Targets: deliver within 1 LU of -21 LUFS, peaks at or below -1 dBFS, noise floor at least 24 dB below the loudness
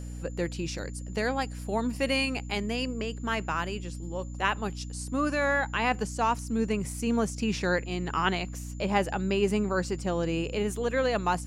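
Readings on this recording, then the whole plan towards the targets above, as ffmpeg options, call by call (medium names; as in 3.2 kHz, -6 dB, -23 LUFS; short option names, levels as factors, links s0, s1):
hum 60 Hz; highest harmonic 300 Hz; hum level -35 dBFS; steady tone 7.1 kHz; tone level -54 dBFS; loudness -29.5 LUFS; peak level -11.0 dBFS; loudness target -21.0 LUFS
-> -af "bandreject=f=60:t=h:w=4,bandreject=f=120:t=h:w=4,bandreject=f=180:t=h:w=4,bandreject=f=240:t=h:w=4,bandreject=f=300:t=h:w=4"
-af "bandreject=f=7100:w=30"
-af "volume=2.66"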